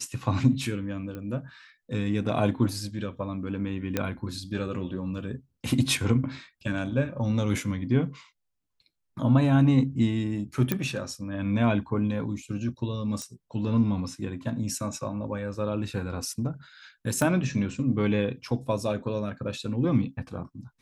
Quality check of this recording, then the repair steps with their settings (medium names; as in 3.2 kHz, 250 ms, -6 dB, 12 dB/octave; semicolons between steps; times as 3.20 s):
1.15 s: pop -25 dBFS
3.97 s: pop -11 dBFS
10.72 s: pop -10 dBFS
13.22 s: pop -21 dBFS
17.22 s: pop -13 dBFS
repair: de-click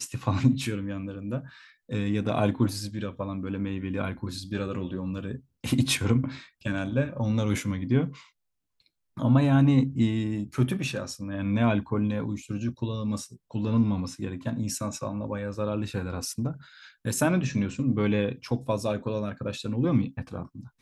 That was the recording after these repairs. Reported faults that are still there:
17.22 s: pop